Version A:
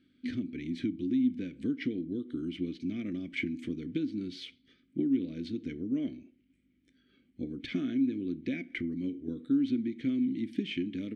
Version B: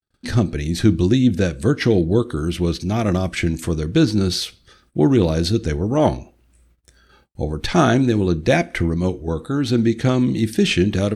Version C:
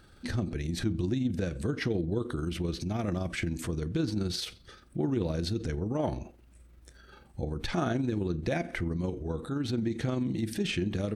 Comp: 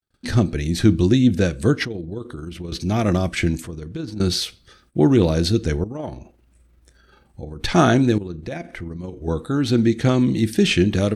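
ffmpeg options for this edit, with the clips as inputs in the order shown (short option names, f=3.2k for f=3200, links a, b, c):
-filter_complex "[2:a]asplit=4[a][b][c][d];[1:a]asplit=5[e][f][g][h][i];[e]atrim=end=1.852[j];[a]atrim=start=1.848:end=2.722[k];[f]atrim=start=2.718:end=3.622[l];[b]atrim=start=3.618:end=4.202[m];[g]atrim=start=4.198:end=5.842[n];[c]atrim=start=5.838:end=7.642[o];[h]atrim=start=7.638:end=8.182[p];[d]atrim=start=8.178:end=9.222[q];[i]atrim=start=9.218[r];[j][k]acrossfade=d=0.004:c1=hsin:c2=hsin[s];[s][l]acrossfade=d=0.004:c1=hsin:c2=hsin[t];[t][m]acrossfade=d=0.004:c1=hsin:c2=hsin[u];[u][n]acrossfade=d=0.004:c1=hsin:c2=hsin[v];[v][o]acrossfade=d=0.004:c1=hsin:c2=hsin[w];[w][p]acrossfade=d=0.004:c1=hsin:c2=hsin[x];[x][q]acrossfade=d=0.004:c1=hsin:c2=hsin[y];[y][r]acrossfade=d=0.004:c1=hsin:c2=hsin"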